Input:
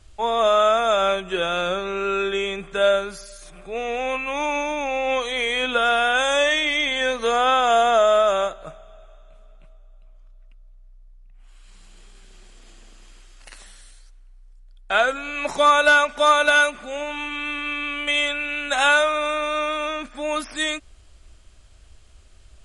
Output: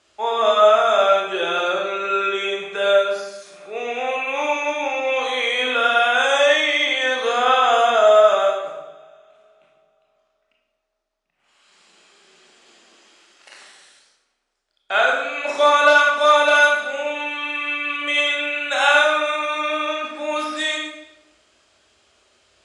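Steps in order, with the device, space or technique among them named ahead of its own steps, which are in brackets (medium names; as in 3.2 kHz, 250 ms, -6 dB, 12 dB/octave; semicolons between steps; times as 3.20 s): supermarket ceiling speaker (band-pass 340–6900 Hz; reverberation RT60 0.90 s, pre-delay 23 ms, DRR -1.5 dB); trim -1 dB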